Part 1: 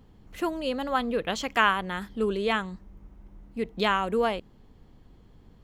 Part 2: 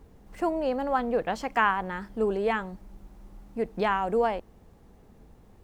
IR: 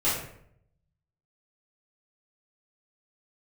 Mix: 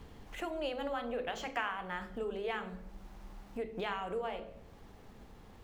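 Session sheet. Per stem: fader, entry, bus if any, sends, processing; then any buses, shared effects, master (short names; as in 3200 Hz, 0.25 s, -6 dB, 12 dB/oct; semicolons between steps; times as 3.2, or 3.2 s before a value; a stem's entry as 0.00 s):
-2.5 dB, 0.00 s, send -23 dB, high shelf 9800 Hz -11 dB; compressor 2.5:1, threshold -29 dBFS, peak gain reduction 9 dB; auto duck -12 dB, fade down 1.80 s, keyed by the second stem
-2.0 dB, 0.00 s, polarity flipped, no send, median filter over 5 samples; de-hum 55.06 Hz, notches 12; compressor, threshold -33 dBFS, peak gain reduction 14.5 dB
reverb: on, RT60 0.65 s, pre-delay 3 ms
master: mismatched tape noise reduction encoder only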